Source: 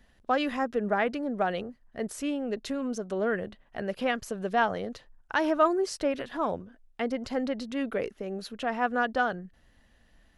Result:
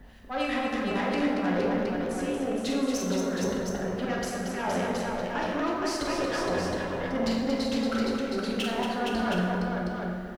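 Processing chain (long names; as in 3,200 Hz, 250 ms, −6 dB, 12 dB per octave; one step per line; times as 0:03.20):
harmonic and percussive parts rebalanced percussive +4 dB
volume swells 324 ms
high-shelf EQ 7,600 Hz −11.5 dB
compressor whose output falls as the input rises −36 dBFS, ratio −1
two-band tremolo in antiphase 3.2 Hz, depth 70%, crossover 1,500 Hz
harmonic generator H 5 −14 dB, 8 −20 dB, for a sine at −22 dBFS
background noise blue −79 dBFS
on a send: multi-tap delay 44/230/466/718 ms −5.5/−6/−4/−5.5 dB
on the sum: dense smooth reverb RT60 2.1 s, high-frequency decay 0.5×, DRR −1.5 dB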